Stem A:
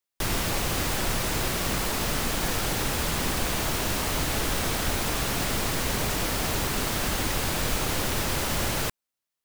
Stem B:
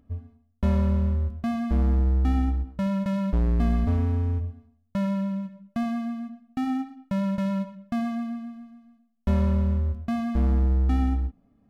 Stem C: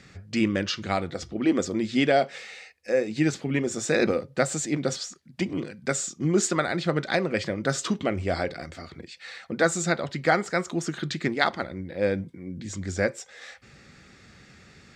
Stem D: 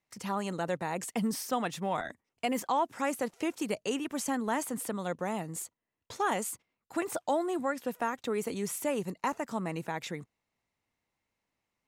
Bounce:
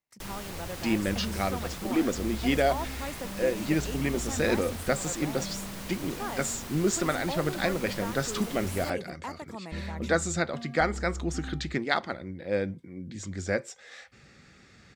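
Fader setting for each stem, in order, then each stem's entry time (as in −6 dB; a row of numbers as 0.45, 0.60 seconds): −13.5, −15.5, −3.5, −7.0 decibels; 0.00, 0.45, 0.50, 0.00 seconds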